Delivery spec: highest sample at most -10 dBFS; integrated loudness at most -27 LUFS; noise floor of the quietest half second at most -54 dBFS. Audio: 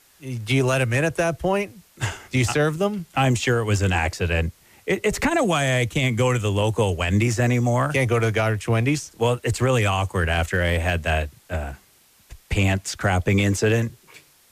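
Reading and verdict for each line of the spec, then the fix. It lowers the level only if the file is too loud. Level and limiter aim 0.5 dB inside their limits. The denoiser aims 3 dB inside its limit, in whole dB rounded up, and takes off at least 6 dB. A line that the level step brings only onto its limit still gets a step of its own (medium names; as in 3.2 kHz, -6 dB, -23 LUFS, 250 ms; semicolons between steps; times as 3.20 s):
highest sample -10.5 dBFS: pass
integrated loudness -22.0 LUFS: fail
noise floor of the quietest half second -56 dBFS: pass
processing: trim -5.5 dB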